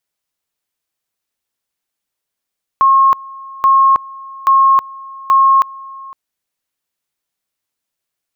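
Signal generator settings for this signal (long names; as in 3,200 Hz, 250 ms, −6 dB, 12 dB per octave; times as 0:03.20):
tone at two levels in turn 1,080 Hz −6 dBFS, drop 22.5 dB, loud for 0.32 s, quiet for 0.51 s, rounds 4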